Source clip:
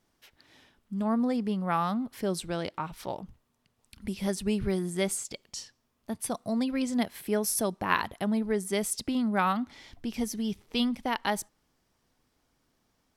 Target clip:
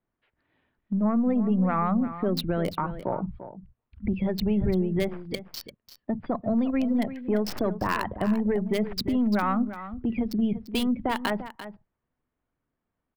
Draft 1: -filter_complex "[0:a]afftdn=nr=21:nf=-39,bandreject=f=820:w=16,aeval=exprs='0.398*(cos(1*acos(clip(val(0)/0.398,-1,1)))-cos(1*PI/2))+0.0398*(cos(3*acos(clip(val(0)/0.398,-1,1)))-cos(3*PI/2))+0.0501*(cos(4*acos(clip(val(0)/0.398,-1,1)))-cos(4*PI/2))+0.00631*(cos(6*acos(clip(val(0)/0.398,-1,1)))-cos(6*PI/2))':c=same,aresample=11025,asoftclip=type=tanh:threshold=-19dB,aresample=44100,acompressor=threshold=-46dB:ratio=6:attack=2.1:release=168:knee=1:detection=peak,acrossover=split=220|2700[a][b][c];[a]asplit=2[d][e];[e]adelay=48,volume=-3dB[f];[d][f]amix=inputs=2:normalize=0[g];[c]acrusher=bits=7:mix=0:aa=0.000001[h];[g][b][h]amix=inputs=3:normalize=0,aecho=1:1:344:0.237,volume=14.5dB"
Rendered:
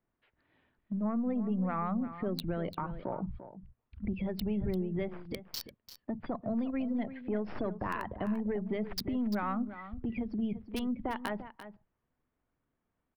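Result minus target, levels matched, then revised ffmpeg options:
compressor: peak gain reduction +8.5 dB
-filter_complex "[0:a]afftdn=nr=21:nf=-39,bandreject=f=820:w=16,aeval=exprs='0.398*(cos(1*acos(clip(val(0)/0.398,-1,1)))-cos(1*PI/2))+0.0398*(cos(3*acos(clip(val(0)/0.398,-1,1)))-cos(3*PI/2))+0.0501*(cos(4*acos(clip(val(0)/0.398,-1,1)))-cos(4*PI/2))+0.00631*(cos(6*acos(clip(val(0)/0.398,-1,1)))-cos(6*PI/2))':c=same,aresample=11025,asoftclip=type=tanh:threshold=-19dB,aresample=44100,acompressor=threshold=-36dB:ratio=6:attack=2.1:release=168:knee=1:detection=peak,acrossover=split=220|2700[a][b][c];[a]asplit=2[d][e];[e]adelay=48,volume=-3dB[f];[d][f]amix=inputs=2:normalize=0[g];[c]acrusher=bits=7:mix=0:aa=0.000001[h];[g][b][h]amix=inputs=3:normalize=0,aecho=1:1:344:0.237,volume=14.5dB"

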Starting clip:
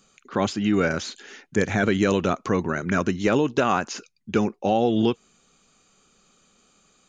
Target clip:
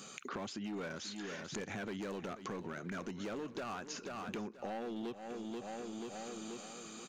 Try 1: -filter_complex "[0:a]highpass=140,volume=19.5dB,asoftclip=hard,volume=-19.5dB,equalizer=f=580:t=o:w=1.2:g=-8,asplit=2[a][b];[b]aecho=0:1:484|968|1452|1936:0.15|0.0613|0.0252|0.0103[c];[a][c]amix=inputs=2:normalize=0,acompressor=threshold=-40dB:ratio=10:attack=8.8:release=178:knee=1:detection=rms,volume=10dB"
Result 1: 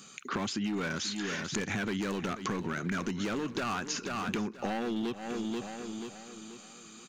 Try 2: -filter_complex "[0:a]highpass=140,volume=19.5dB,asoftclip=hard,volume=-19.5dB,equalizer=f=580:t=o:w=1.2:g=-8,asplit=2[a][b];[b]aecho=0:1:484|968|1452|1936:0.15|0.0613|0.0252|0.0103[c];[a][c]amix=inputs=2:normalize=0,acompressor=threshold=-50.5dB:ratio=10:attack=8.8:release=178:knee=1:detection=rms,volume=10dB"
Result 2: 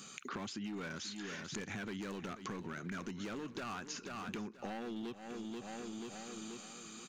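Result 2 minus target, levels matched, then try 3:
500 Hz band -3.0 dB
-filter_complex "[0:a]highpass=140,volume=19.5dB,asoftclip=hard,volume=-19.5dB,asplit=2[a][b];[b]aecho=0:1:484|968|1452|1936:0.15|0.0613|0.0252|0.0103[c];[a][c]amix=inputs=2:normalize=0,acompressor=threshold=-50.5dB:ratio=10:attack=8.8:release=178:knee=1:detection=rms,volume=10dB"

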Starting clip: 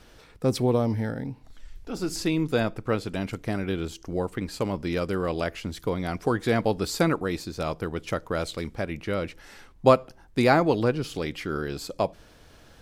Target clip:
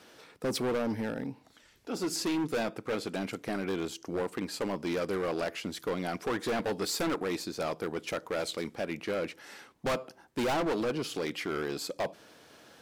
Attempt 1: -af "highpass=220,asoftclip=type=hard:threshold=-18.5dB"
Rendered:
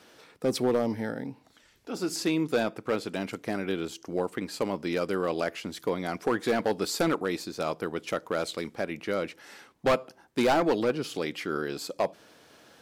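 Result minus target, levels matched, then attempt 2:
hard clip: distortion -6 dB
-af "highpass=220,asoftclip=type=hard:threshold=-27dB"

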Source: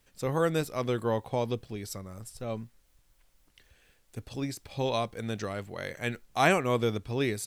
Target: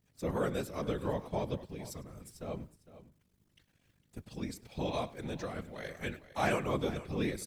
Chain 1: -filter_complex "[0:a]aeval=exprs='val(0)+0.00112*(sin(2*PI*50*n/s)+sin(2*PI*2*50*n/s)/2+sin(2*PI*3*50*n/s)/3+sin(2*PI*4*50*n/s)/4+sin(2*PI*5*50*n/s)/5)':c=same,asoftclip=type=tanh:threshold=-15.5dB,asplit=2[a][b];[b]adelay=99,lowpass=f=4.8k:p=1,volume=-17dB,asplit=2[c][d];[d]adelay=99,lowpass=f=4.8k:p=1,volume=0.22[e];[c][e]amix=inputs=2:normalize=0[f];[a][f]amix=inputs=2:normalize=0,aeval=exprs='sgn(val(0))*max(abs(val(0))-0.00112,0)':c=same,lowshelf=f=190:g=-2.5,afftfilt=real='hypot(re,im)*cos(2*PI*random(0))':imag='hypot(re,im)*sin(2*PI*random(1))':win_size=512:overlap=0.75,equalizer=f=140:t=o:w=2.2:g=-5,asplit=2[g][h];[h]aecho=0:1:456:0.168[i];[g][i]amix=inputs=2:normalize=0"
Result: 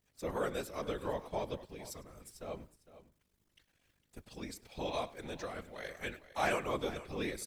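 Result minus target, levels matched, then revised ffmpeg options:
125 Hz band -6.0 dB
-filter_complex "[0:a]aeval=exprs='val(0)+0.00112*(sin(2*PI*50*n/s)+sin(2*PI*2*50*n/s)/2+sin(2*PI*3*50*n/s)/3+sin(2*PI*4*50*n/s)/4+sin(2*PI*5*50*n/s)/5)':c=same,asoftclip=type=tanh:threshold=-15.5dB,asplit=2[a][b];[b]adelay=99,lowpass=f=4.8k:p=1,volume=-17dB,asplit=2[c][d];[d]adelay=99,lowpass=f=4.8k:p=1,volume=0.22[e];[c][e]amix=inputs=2:normalize=0[f];[a][f]amix=inputs=2:normalize=0,aeval=exprs='sgn(val(0))*max(abs(val(0))-0.00112,0)':c=same,lowshelf=f=190:g=-2.5,afftfilt=real='hypot(re,im)*cos(2*PI*random(0))':imag='hypot(re,im)*sin(2*PI*random(1))':win_size=512:overlap=0.75,equalizer=f=140:t=o:w=2.2:g=4.5,asplit=2[g][h];[h]aecho=0:1:456:0.168[i];[g][i]amix=inputs=2:normalize=0"

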